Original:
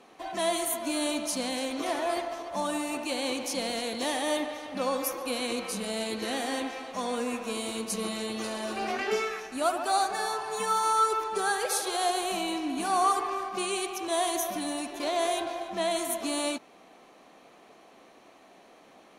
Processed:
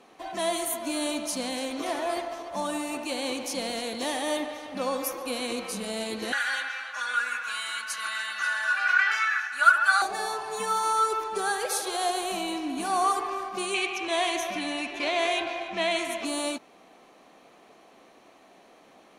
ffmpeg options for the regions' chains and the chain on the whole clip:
ffmpeg -i in.wav -filter_complex "[0:a]asettb=1/sr,asplit=3[link_01][link_02][link_03];[link_01]atrim=end=6.324[link_04];[link_02]atrim=start=6.32:end=10.02,asetpts=PTS-STARTPTS,afade=type=in:duration=0.004:curve=qsin,afade=type=out:start_time=3.696:duration=0.004:curve=qsin,highpass=frequency=1500:width_type=q:width=13,highshelf=frequency=7400:gain=-7,aecho=1:1:3.5:0.79,atrim=end_sample=163170[link_05];[link_03]atrim=start=10.016[link_06];[link_04][link_05]acrossfade=duration=0.004:curve1=hsin:curve2=qsin[link_07];[link_07][link_06]acrossfade=duration=0.004:curve1=qsin:curve2=hsin,asettb=1/sr,asplit=3[link_08][link_09][link_10];[link_08]atrim=end=13.744[link_11];[link_09]atrim=start=13.74:end=16.25,asetpts=PTS-STARTPTS,afade=type=in:duration=0.004:curve=qsin,afade=type=out:start_time=2.506:duration=0.004:curve=qsin,lowpass=7000,equalizer=frequency=2400:width_type=o:width=0.79:gain=12.5[link_12];[link_10]atrim=start=16.246[link_13];[link_11][link_12]acrossfade=duration=0.004:curve1=hsin:curve2=qsin[link_14];[link_14][link_13]acrossfade=duration=0.004:curve1=qsin:curve2=hsin" out.wav

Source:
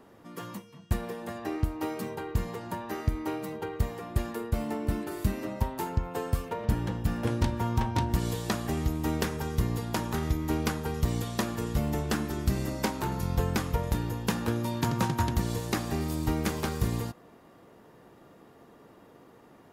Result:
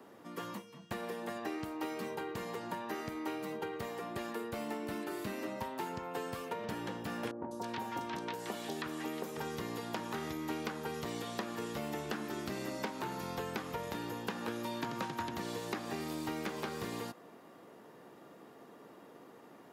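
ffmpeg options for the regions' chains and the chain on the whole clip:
ffmpeg -i in.wav -filter_complex "[0:a]asettb=1/sr,asplit=3[link_01][link_02][link_03];[link_01]atrim=end=7.314[link_04];[link_02]atrim=start=7.31:end=9.37,asetpts=PTS-STARTPTS,afade=type=in:duration=0.004:curve=qsin,afade=type=out:start_time=2.056:duration=0.004:curve=qsin,highpass=frequency=390:poles=1,acrossover=split=1000|4900[link_05][link_06][link_07];[link_07]adelay=200[link_08];[link_06]adelay=320[link_09];[link_05][link_09][link_08]amix=inputs=3:normalize=0,atrim=end_sample=90846[link_10];[link_03]atrim=start=9.366[link_11];[link_04][link_10]acrossfade=duration=0.004:curve1=hsin:curve2=qsin[link_12];[link_12][link_11]acrossfade=duration=0.004:curve1=qsin:curve2=hsin,acrossover=split=4600[link_13][link_14];[link_14]acompressor=threshold=-51dB:ratio=4:attack=1:release=60[link_15];[link_13][link_15]amix=inputs=2:normalize=0,highpass=190,acrossover=split=270|1500[link_16][link_17][link_18];[link_16]acompressor=threshold=-47dB:ratio=4[link_19];[link_17]acompressor=threshold=-39dB:ratio=4[link_20];[link_18]acompressor=threshold=-44dB:ratio=4[link_21];[link_19][link_20][link_21]amix=inputs=3:normalize=0" out.wav

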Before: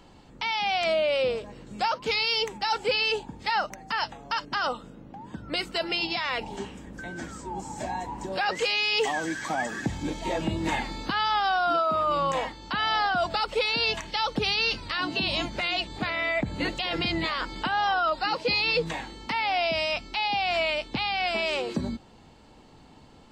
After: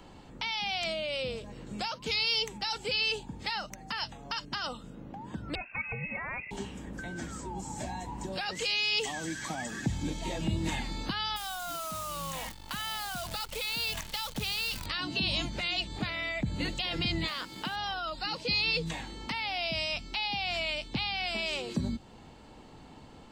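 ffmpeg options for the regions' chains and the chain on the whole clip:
ffmpeg -i in.wav -filter_complex "[0:a]asettb=1/sr,asplit=3[link_01][link_02][link_03];[link_01]atrim=end=5.554[link_04];[link_02]atrim=start=5.55:end=6.51,asetpts=PTS-STARTPTS,afade=type=in:duration=0.004:curve=qsin,afade=type=out:start_time=0.956:duration=0.004:curve=qsin,highpass=300,lowpass=frequency=2500:width_type=q:width=0.5098,lowpass=frequency=2500:width_type=q:width=0.6013,lowpass=frequency=2500:width_type=q:width=0.9,lowpass=frequency=2500:width_type=q:width=2.563,afreqshift=-2900[link_05];[link_03]atrim=start=6.506[link_06];[link_04][link_05]acrossfade=duration=0.004:curve1=hsin:curve2=qsin[link_07];[link_07][link_06]acrossfade=duration=0.004:curve1=qsin:curve2=hsin,asettb=1/sr,asplit=3[link_08][link_09][link_10];[link_08]atrim=end=11.364[link_11];[link_09]atrim=start=11.36:end=14.86,asetpts=PTS-STARTPTS,afade=type=in:duration=0.004:curve=qsin,afade=type=out:start_time=3.496:duration=0.004:curve=qsin,equalizer=frequency=370:width=1.4:gain=-8,acompressor=threshold=-29dB:ratio=2.5:attack=3.2:release=140:knee=1:detection=peak,acrusher=bits=7:dc=4:mix=0:aa=0.000001[link_12];[link_10]atrim=start=14.856[link_13];[link_11][link_12]acrossfade=duration=0.004:curve1=hsin:curve2=qsin[link_14];[link_14][link_13]acrossfade=duration=0.004:curve1=qsin:curve2=hsin,asettb=1/sr,asplit=3[link_15][link_16][link_17];[link_15]atrim=end=17.284[link_18];[link_16]atrim=start=17.28:end=17.76,asetpts=PTS-STARTPTS,afade=type=in:duration=0.004:curve=qsin,afade=type=out:start_time=0.476:duration=0.004:curve=qsin,highpass=130,aeval=exprs='sgn(val(0))*max(abs(val(0))-0.00355,0)':channel_layout=same[link_19];[link_17]atrim=start=17.756[link_20];[link_18][link_19]acrossfade=duration=0.004:curve1=hsin:curve2=qsin[link_21];[link_21][link_20]acrossfade=duration=0.004:curve1=qsin:curve2=hsin,equalizer=frequency=5000:width_type=o:width=0.77:gain=-2.5,acrossover=split=220|3000[link_22][link_23][link_24];[link_23]acompressor=threshold=-44dB:ratio=2.5[link_25];[link_22][link_25][link_24]amix=inputs=3:normalize=0,volume=1.5dB" out.wav

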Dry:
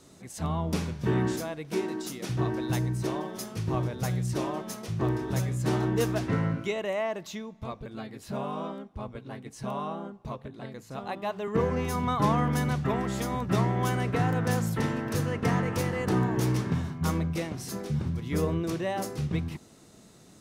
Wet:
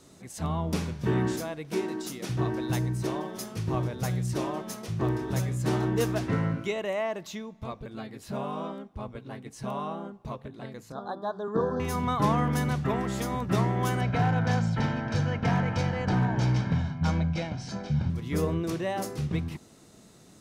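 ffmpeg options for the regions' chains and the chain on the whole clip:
ffmpeg -i in.wav -filter_complex "[0:a]asettb=1/sr,asplit=3[link_01][link_02][link_03];[link_01]atrim=end=10.924[link_04];[link_02]atrim=start=10.92:end=11.8,asetpts=PTS-STARTPTS,afade=type=in:duration=0.004:curve=qsin,afade=type=out:start_time=0.876:duration=0.004:curve=qsin,asuperstop=centerf=2400:order=12:qfactor=1.4,acrossover=split=150 4300:gain=0.224 1 0.178[link_05][link_06][link_07];[link_05][link_06][link_07]amix=inputs=3:normalize=0[link_08];[link_03]atrim=start=11.796[link_09];[link_04][link_08]acrossfade=duration=0.004:curve1=hsin:curve2=qsin[link_10];[link_10][link_09]acrossfade=duration=0.004:curve1=qsin:curve2=hsin,asettb=1/sr,asplit=3[link_11][link_12][link_13];[link_11]atrim=end=14.014[link_14];[link_12]atrim=start=14.01:end=18.1,asetpts=PTS-STARTPTS,afade=type=in:duration=0.004:curve=qsin,afade=type=out:start_time=4.086:duration=0.004:curve=qsin,lowpass=frequency=5700:width=0.5412,lowpass=frequency=5700:width=1.3066,aecho=1:1:1.3:0.63,atrim=end_sample=180369,asoftclip=type=hard:threshold=-19dB[link_15];[link_13]atrim=start=18.096[link_16];[link_14][link_15]acrossfade=duration=0.004:curve1=hsin:curve2=qsin[link_17];[link_17][link_16]acrossfade=duration=0.004:curve1=qsin:curve2=hsin" out.wav

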